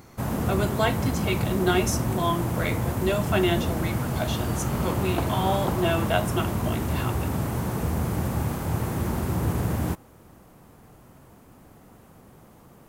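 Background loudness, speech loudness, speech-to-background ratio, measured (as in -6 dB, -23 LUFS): -27.5 LUFS, -28.5 LUFS, -1.0 dB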